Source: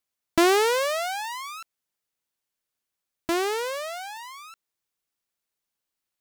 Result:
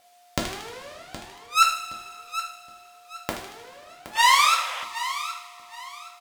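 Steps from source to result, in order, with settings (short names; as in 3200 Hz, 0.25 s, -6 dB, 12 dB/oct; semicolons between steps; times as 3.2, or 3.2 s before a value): weighting filter A; flipped gate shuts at -27 dBFS, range -42 dB; thin delay 77 ms, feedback 55%, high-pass 2200 Hz, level -15.5 dB; sine folder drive 14 dB, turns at -11.5 dBFS; whine 710 Hz -59 dBFS; feedback echo 0.769 s, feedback 29%, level -12.5 dB; two-slope reverb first 0.53 s, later 3 s, from -18 dB, DRR -1 dB; painted sound noise, 4.15–4.85, 480–3600 Hz -39 dBFS; gain +3.5 dB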